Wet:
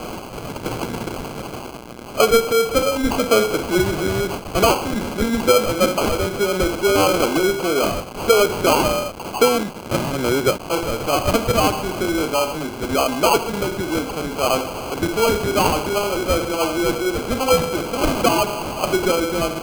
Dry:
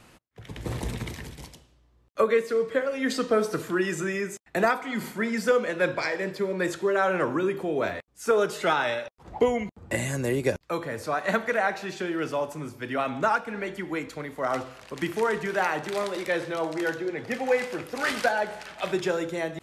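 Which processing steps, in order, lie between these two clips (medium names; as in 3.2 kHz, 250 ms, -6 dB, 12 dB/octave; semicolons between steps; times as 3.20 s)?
jump at every zero crossing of -30 dBFS; high-pass 220 Hz 12 dB/octave; sample-and-hold 24×; trim +6.5 dB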